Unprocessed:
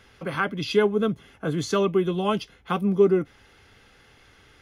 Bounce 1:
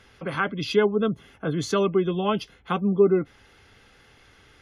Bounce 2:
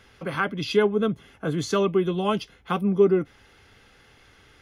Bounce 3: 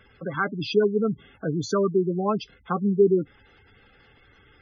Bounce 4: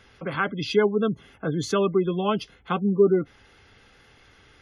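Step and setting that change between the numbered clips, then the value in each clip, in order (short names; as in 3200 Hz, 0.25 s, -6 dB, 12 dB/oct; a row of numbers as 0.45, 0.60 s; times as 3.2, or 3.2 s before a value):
spectral gate, under each frame's peak: -40, -60, -15, -30 dB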